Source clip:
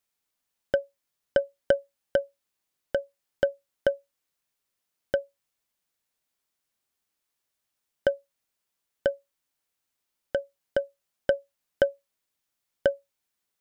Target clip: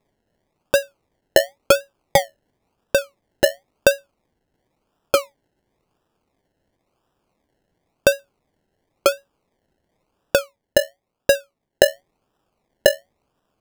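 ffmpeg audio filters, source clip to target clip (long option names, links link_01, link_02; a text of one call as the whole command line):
ffmpeg -i in.wav -filter_complex "[0:a]asettb=1/sr,asplit=3[link_01][link_02][link_03];[link_01]atrim=end=10.384[link_04];[link_02]atrim=start=10.38:end=11.85,asetpts=PTS-STARTPTS,afade=type=in:duration=0.004:curve=qsin,afade=type=out:start_time=1.466:duration=0.004:curve=qsin,highshelf=frequency=3800:gain=-11.5[link_05];[link_03]atrim=start=11.846[link_06];[link_04][link_05]acrossfade=duration=0.004:curve1=hsin:curve2=qsin[link_07];[link_07][link_06]acrossfade=duration=0.004:curve1=qsin:curve2=hsin,asplit=2[link_08][link_09];[link_09]alimiter=limit=-16dB:level=0:latency=1:release=39,volume=-2dB[link_10];[link_08][link_10]amix=inputs=2:normalize=0,acrusher=samples=29:mix=1:aa=0.000001:lfo=1:lforange=17.4:lforate=0.95,volume=5dB" out.wav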